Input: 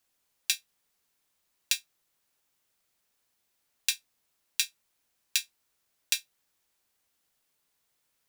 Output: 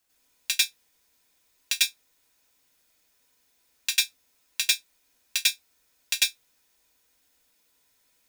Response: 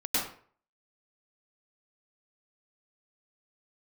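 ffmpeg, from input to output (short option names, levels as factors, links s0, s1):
-filter_complex "[0:a]acrossover=split=320|1100|2600[s0][s1][s2][s3];[s3]asoftclip=type=tanh:threshold=0.119[s4];[s0][s1][s2][s4]amix=inputs=4:normalize=0[s5];[1:a]atrim=start_sample=2205,afade=t=out:st=0.15:d=0.01,atrim=end_sample=7056[s6];[s5][s6]afir=irnorm=-1:irlink=0,volume=1.68"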